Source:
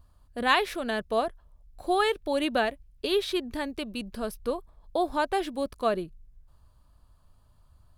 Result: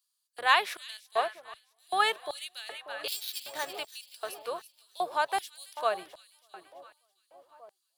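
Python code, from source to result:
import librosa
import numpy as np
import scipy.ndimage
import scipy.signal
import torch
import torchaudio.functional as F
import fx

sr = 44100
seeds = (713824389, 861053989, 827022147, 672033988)

y = fx.octave_divider(x, sr, octaves=1, level_db=-2.0)
y = fx.sample_hold(y, sr, seeds[0], rate_hz=7800.0, jitter_pct=0, at=(3.08, 3.79))
y = fx.high_shelf(y, sr, hz=10000.0, db=9.0, at=(5.3, 5.71))
y = fx.echo_split(y, sr, split_hz=1000.0, low_ms=589, high_ms=331, feedback_pct=52, wet_db=-11)
y = fx.filter_lfo_highpass(y, sr, shape='square', hz=1.3, low_hz=760.0, high_hz=4600.0, q=0.9)
y = fx.peak_eq(y, sr, hz=240.0, db=-12.5, octaves=0.44)
y = fx.band_widen(y, sr, depth_pct=40, at=(0.97, 2.24))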